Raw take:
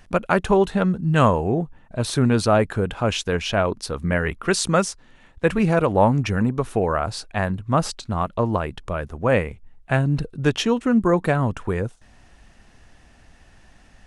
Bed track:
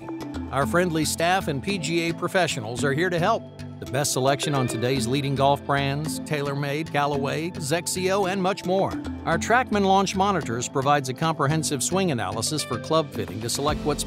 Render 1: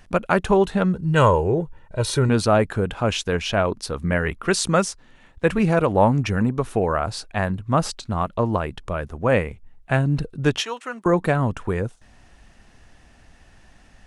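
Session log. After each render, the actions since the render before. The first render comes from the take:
0:00.95–0:02.29: comb filter 2.1 ms, depth 63%
0:10.60–0:11.06: high-pass filter 830 Hz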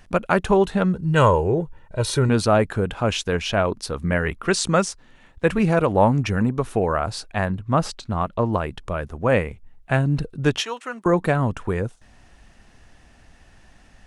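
0:04.48–0:04.90: low-pass filter 9,600 Hz 24 dB per octave
0:07.45–0:08.53: high-shelf EQ 6,300 Hz −6.5 dB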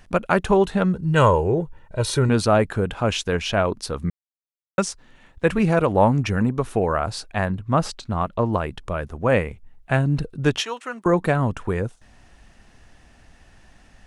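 0:04.10–0:04.78: silence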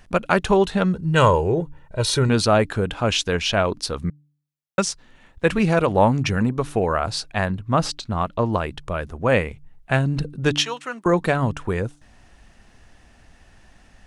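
hum removal 146.8 Hz, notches 2
dynamic equaliser 4,300 Hz, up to +6 dB, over −42 dBFS, Q 0.73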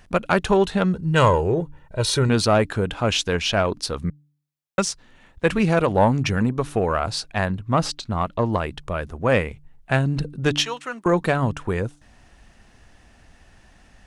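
one-sided soft clipper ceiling −4.5 dBFS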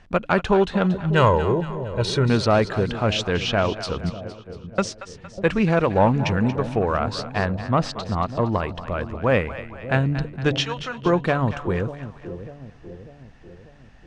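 high-frequency loss of the air 110 metres
echo with a time of its own for lows and highs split 620 Hz, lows 595 ms, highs 231 ms, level −12 dB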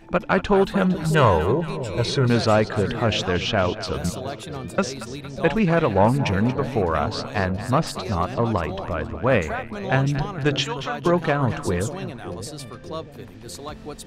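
mix in bed track −11 dB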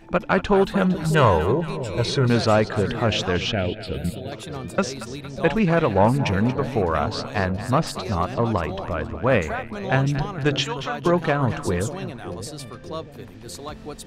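0:03.52–0:04.32: phaser with its sweep stopped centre 2,600 Hz, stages 4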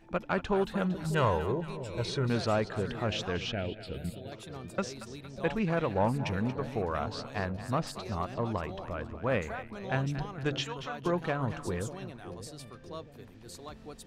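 level −10.5 dB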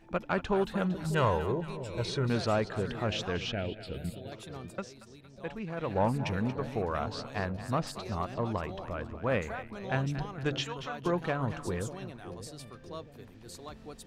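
0:04.65–0:05.95: duck −8.5 dB, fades 0.19 s

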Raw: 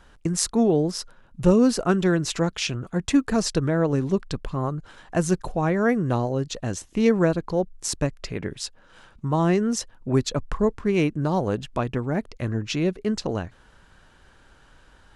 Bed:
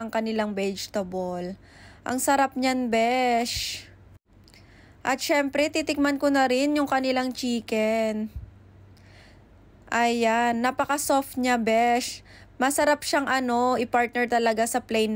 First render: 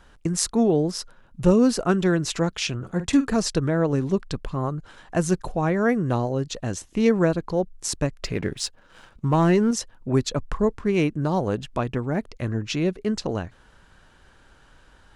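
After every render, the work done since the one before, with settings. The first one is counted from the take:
0:02.75–0:03.34: double-tracking delay 47 ms −11 dB
0:08.21–0:09.71: leveller curve on the samples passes 1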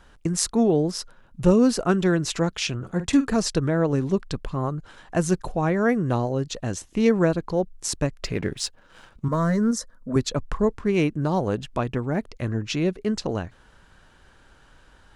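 0:09.28–0:10.16: phaser with its sweep stopped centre 540 Hz, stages 8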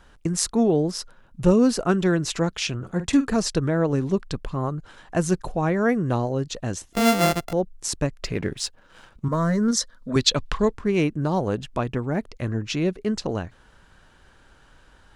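0:06.93–0:07.53: samples sorted by size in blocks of 64 samples
0:09.68–0:10.71: parametric band 3,600 Hz +14 dB 1.8 octaves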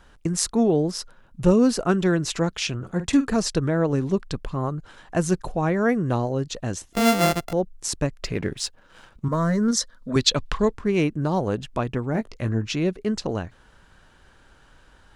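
0:12.12–0:12.66: double-tracking delay 18 ms −8.5 dB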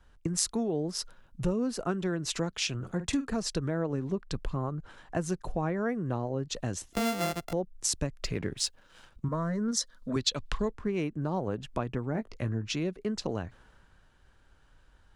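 downward compressor 4 to 1, threshold −29 dBFS, peak gain reduction 14.5 dB
multiband upward and downward expander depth 40%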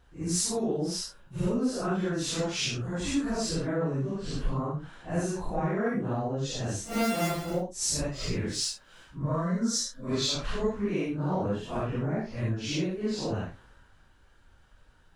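random phases in long frames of 200 ms
in parallel at −10.5 dB: soft clipping −25.5 dBFS, distortion −16 dB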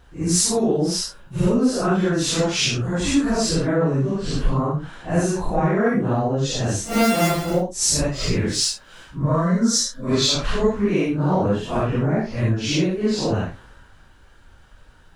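level +9.5 dB

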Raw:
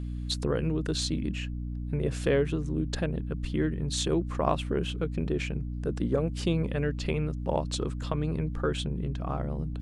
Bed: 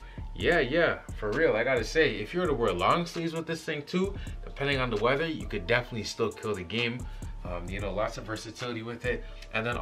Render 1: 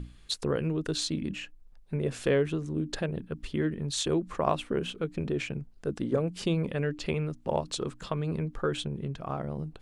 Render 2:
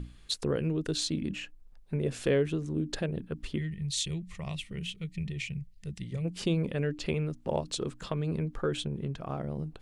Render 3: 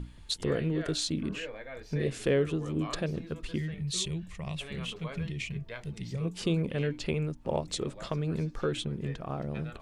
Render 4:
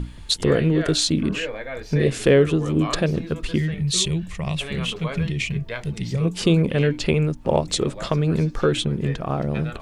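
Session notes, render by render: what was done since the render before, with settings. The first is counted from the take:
mains-hum notches 60/120/180/240/300 Hz
0:03.58–0:06.25: gain on a spectral selection 210–1,800 Hz −18 dB; dynamic equaliser 1,100 Hz, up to −5 dB, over −44 dBFS, Q 0.97
mix in bed −17 dB
level +11 dB

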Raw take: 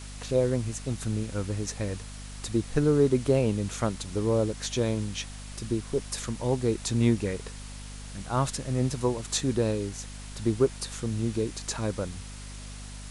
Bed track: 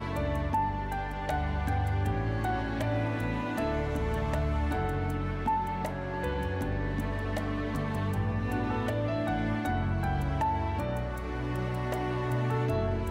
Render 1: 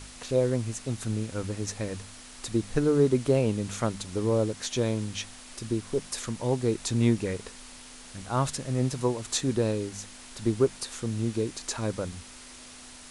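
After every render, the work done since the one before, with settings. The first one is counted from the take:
hum removal 50 Hz, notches 4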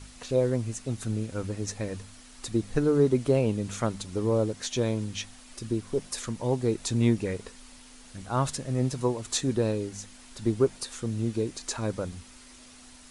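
broadband denoise 6 dB, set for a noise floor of −47 dBFS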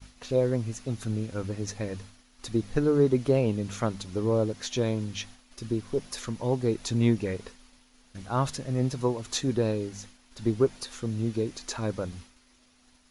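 downward expander −42 dBFS
parametric band 8,300 Hz −11 dB 0.34 octaves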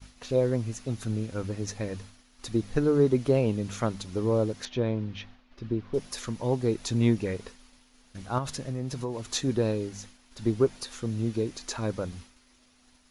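0:04.65–0:05.94: high-frequency loss of the air 270 metres
0:08.38–0:09.31: downward compressor, threshold −27 dBFS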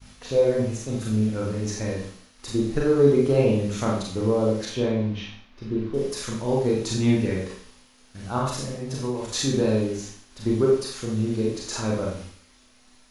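four-comb reverb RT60 0.54 s, combs from 29 ms, DRR −3.5 dB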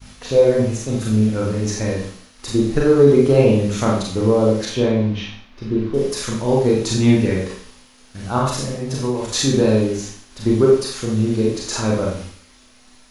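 level +6.5 dB
brickwall limiter −2 dBFS, peak gain reduction 2.5 dB

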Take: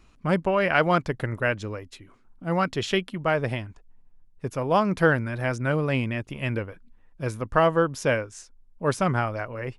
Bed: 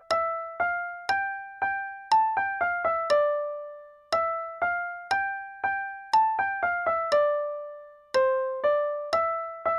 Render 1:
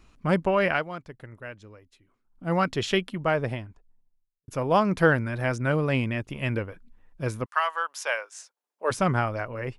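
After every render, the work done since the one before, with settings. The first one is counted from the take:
0:00.69–0:02.46: duck −15 dB, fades 0.15 s
0:03.10–0:04.48: fade out and dull
0:07.44–0:08.90: high-pass filter 1,100 Hz → 400 Hz 24 dB per octave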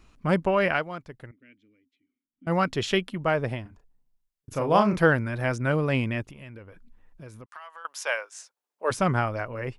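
0:01.31–0:02.47: formant filter i
0:03.62–0:04.99: double-tracking delay 34 ms −5 dB
0:06.25–0:07.85: downward compressor 4 to 1, threshold −43 dBFS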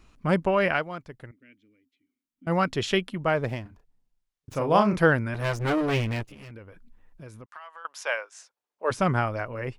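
0:03.36–0:04.55: windowed peak hold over 3 samples
0:05.34–0:06.51: lower of the sound and its delayed copy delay 9.7 ms
0:07.36–0:08.99: high-shelf EQ 6,600 Hz −9 dB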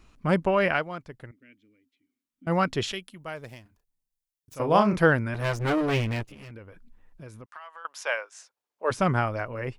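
0:02.92–0:04.60: first-order pre-emphasis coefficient 0.8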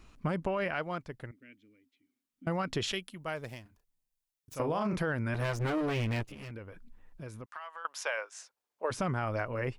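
brickwall limiter −18.5 dBFS, peak gain reduction 10.5 dB
downward compressor, threshold −28 dBFS, peak gain reduction 6 dB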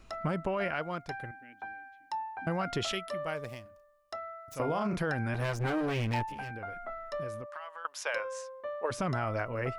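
mix in bed −15 dB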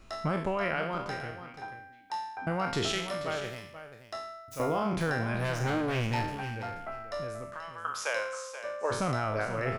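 peak hold with a decay on every bin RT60 0.68 s
single-tap delay 482 ms −11.5 dB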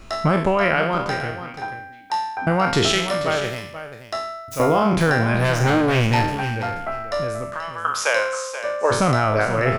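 level +12 dB

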